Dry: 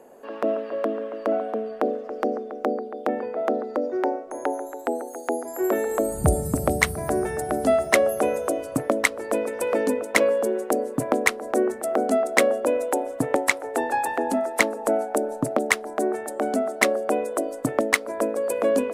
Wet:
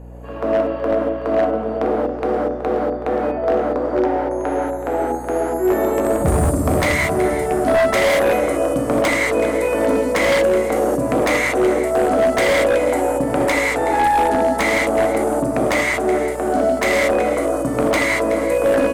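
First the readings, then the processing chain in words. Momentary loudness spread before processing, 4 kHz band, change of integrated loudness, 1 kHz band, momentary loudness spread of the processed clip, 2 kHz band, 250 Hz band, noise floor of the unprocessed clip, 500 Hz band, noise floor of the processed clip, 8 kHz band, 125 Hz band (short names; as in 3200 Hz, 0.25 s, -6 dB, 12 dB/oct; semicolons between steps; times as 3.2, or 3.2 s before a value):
8 LU, +6.5 dB, +6.5 dB, +7.5 dB, 6 LU, +5.5 dB, +7.0 dB, -37 dBFS, +6.5 dB, -26 dBFS, +1.5 dB, +7.0 dB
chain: on a send: echo 0.374 s -14 dB; on the sum: non-linear reverb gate 0.26 s flat, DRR -6.5 dB; wavefolder -9.5 dBFS; hum 60 Hz, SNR 19 dB; high shelf 4300 Hz -7 dB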